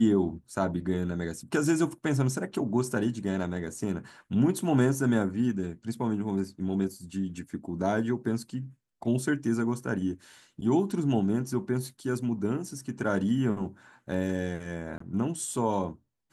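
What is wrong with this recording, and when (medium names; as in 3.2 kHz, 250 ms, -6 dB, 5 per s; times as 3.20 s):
14.98–15.00 s: dropout 24 ms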